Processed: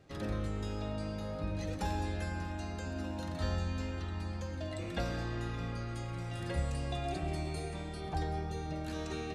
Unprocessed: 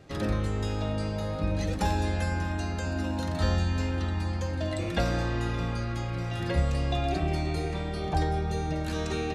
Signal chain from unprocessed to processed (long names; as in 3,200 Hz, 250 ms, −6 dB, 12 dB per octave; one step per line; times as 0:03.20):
0:05.88–0:08.01: parametric band 8,800 Hz +10 dB 0.53 octaves
convolution reverb RT60 1.0 s, pre-delay 70 ms, DRR 10.5 dB
level −8.5 dB